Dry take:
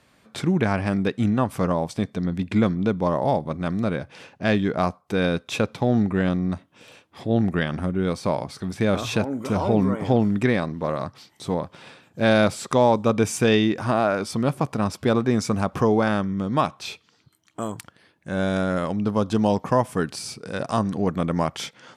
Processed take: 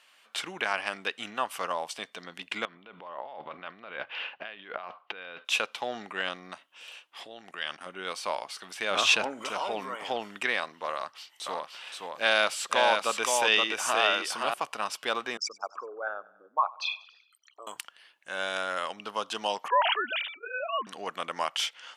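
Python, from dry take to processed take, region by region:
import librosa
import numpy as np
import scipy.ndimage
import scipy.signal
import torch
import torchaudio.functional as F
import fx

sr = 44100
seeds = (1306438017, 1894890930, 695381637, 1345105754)

y = fx.chain(x, sr, fx.lowpass(hz=3300.0, slope=24),
    fx.over_compress(threshold_db=-31.0, ratio=-1.0), at=(2.65, 5.45))
y = fx.chain(y, sr, fx.lowpass(hz=8700.0, slope=12),
    fx.high_shelf(hz=6100.0, db=9.5),
    fx.level_steps(step_db=15), at=(7.25, 7.86))
y = fx.chain(y, sr, fx.lowpass(hz=8500.0, slope=12),
    fx.low_shelf(hz=270.0, db=8.5),
    fx.sustainer(db_per_s=37.0), at=(8.91, 9.49))
y = fx.chain(y, sr, fx.highpass(hz=42.0, slope=12),
    fx.echo_single(ms=521, db=-3.5), at=(10.94, 14.54))
y = fx.chain(y, sr, fx.envelope_sharpen(power=3.0),
    fx.highpass(hz=710.0, slope=12),
    fx.echo_feedback(ms=95, feedback_pct=55, wet_db=-21.0), at=(15.37, 17.67))
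y = fx.chain(y, sr, fx.sine_speech(),
    fx.sustainer(db_per_s=83.0), at=(19.68, 20.87))
y = scipy.signal.sosfilt(scipy.signal.butter(2, 970.0, 'highpass', fs=sr, output='sos'), y)
y = fx.peak_eq(y, sr, hz=2900.0, db=10.5, octaves=0.26)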